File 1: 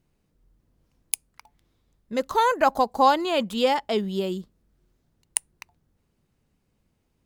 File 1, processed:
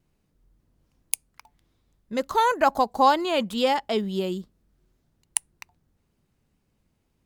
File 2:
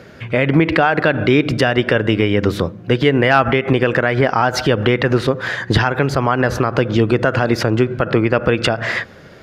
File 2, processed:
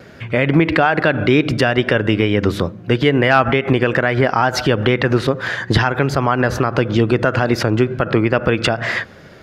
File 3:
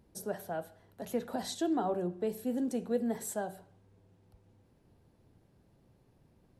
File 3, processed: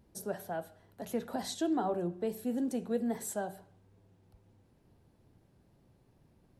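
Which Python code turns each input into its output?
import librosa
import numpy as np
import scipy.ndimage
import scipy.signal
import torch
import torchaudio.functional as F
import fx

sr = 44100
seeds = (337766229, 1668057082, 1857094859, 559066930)

y = fx.peak_eq(x, sr, hz=480.0, db=-2.0, octaves=0.28)
y = fx.vibrato(y, sr, rate_hz=2.3, depth_cents=33.0)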